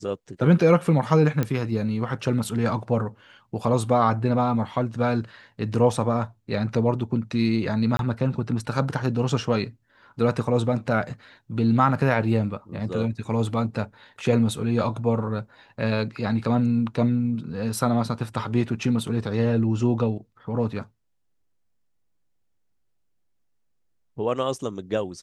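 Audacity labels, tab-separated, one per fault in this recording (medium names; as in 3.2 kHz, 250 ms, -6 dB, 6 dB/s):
1.430000	1.430000	pop -12 dBFS
7.970000	7.990000	dropout 22 ms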